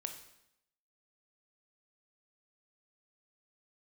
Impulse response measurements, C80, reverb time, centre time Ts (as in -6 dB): 11.0 dB, 0.80 s, 17 ms